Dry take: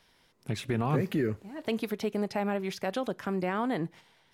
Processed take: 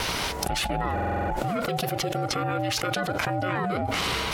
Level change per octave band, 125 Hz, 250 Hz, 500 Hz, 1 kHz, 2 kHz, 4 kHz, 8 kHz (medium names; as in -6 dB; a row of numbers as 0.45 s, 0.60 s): +4.0 dB, -0.5 dB, +2.5 dB, +9.5 dB, +10.0 dB, +14.5 dB, +16.5 dB